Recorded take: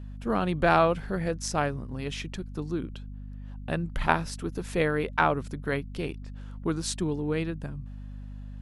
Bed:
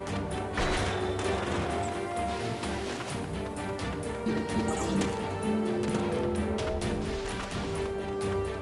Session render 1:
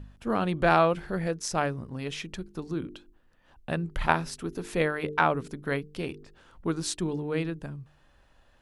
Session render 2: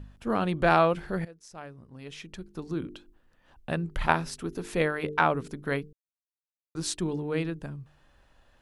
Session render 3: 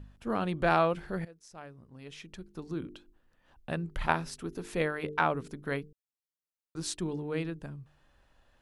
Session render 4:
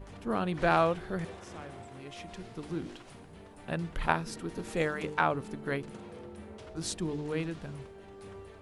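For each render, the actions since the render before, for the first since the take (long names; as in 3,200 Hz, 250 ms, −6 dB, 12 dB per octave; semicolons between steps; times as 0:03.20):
hum removal 50 Hz, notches 9
0:01.25–0:02.74: fade in quadratic, from −19 dB; 0:05.93–0:06.75: silence
level −4 dB
mix in bed −16.5 dB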